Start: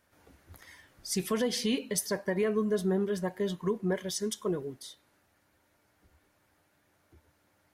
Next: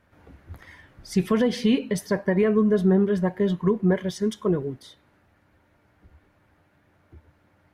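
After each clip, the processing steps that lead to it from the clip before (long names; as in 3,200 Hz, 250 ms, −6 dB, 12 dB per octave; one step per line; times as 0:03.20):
bass and treble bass +6 dB, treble −14 dB
level +6.5 dB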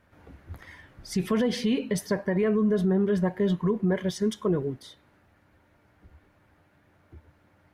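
brickwall limiter −17 dBFS, peak gain reduction 6.5 dB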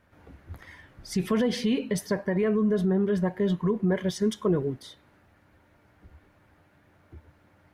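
speech leveller 2 s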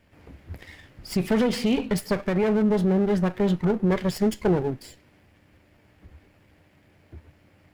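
lower of the sound and its delayed copy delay 0.4 ms
level +3.5 dB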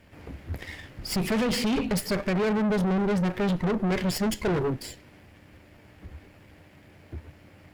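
tube saturation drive 28 dB, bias 0.35
in parallel at −10.5 dB: gain into a clipping stage and back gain 35 dB
on the sum: level +4.5 dB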